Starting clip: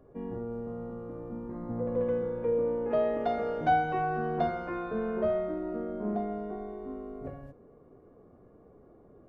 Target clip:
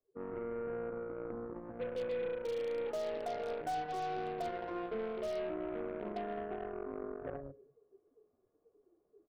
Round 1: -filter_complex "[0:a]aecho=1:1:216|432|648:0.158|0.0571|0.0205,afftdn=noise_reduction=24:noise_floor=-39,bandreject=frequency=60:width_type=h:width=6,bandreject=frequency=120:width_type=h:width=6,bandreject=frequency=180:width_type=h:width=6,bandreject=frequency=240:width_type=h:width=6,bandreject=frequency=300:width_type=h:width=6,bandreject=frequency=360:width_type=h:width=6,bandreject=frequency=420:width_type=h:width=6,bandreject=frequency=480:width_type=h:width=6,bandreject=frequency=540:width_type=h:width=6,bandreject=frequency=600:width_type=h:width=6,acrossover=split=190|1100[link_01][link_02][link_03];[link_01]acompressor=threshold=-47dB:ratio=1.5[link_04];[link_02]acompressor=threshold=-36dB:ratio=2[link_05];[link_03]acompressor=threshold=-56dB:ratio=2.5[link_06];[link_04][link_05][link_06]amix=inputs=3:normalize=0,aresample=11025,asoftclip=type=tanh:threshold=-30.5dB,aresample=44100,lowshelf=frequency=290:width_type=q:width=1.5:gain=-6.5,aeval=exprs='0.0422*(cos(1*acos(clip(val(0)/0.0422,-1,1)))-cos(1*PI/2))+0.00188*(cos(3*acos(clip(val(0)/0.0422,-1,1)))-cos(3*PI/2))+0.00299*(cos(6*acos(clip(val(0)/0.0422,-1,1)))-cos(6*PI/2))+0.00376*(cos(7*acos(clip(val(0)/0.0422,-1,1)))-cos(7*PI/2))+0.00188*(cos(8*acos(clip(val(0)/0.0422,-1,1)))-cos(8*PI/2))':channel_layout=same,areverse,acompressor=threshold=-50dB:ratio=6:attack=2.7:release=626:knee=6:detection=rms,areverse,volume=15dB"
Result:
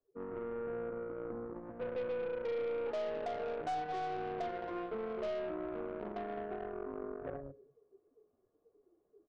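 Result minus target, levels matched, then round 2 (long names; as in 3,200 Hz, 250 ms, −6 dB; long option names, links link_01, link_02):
soft clipping: distortion +18 dB
-filter_complex "[0:a]aecho=1:1:216|432|648:0.158|0.0571|0.0205,afftdn=noise_reduction=24:noise_floor=-39,bandreject=frequency=60:width_type=h:width=6,bandreject=frequency=120:width_type=h:width=6,bandreject=frequency=180:width_type=h:width=6,bandreject=frequency=240:width_type=h:width=6,bandreject=frequency=300:width_type=h:width=6,bandreject=frequency=360:width_type=h:width=6,bandreject=frequency=420:width_type=h:width=6,bandreject=frequency=480:width_type=h:width=6,bandreject=frequency=540:width_type=h:width=6,bandreject=frequency=600:width_type=h:width=6,acrossover=split=190|1100[link_01][link_02][link_03];[link_01]acompressor=threshold=-47dB:ratio=1.5[link_04];[link_02]acompressor=threshold=-36dB:ratio=2[link_05];[link_03]acompressor=threshold=-56dB:ratio=2.5[link_06];[link_04][link_05][link_06]amix=inputs=3:normalize=0,aresample=11025,asoftclip=type=tanh:threshold=-19dB,aresample=44100,lowshelf=frequency=290:width_type=q:width=1.5:gain=-6.5,aeval=exprs='0.0422*(cos(1*acos(clip(val(0)/0.0422,-1,1)))-cos(1*PI/2))+0.00188*(cos(3*acos(clip(val(0)/0.0422,-1,1)))-cos(3*PI/2))+0.00299*(cos(6*acos(clip(val(0)/0.0422,-1,1)))-cos(6*PI/2))+0.00376*(cos(7*acos(clip(val(0)/0.0422,-1,1)))-cos(7*PI/2))+0.00188*(cos(8*acos(clip(val(0)/0.0422,-1,1)))-cos(8*PI/2))':channel_layout=same,areverse,acompressor=threshold=-50dB:ratio=6:attack=2.7:release=626:knee=6:detection=rms,areverse,volume=15dB"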